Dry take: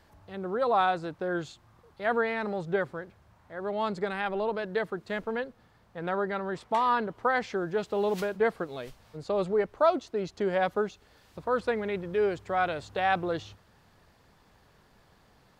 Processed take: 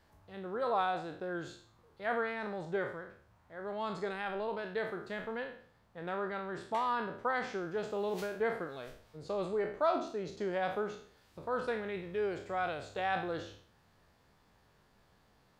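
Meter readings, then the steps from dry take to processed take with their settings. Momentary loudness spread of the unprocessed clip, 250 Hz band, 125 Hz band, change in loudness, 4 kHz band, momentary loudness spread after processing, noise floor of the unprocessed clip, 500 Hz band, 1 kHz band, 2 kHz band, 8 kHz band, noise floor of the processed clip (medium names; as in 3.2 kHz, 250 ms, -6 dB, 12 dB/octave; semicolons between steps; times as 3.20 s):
13 LU, -7.0 dB, -7.0 dB, -6.5 dB, -5.5 dB, 14 LU, -62 dBFS, -7.0 dB, -6.5 dB, -6.0 dB, no reading, -68 dBFS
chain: spectral sustain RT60 0.53 s; trim -8 dB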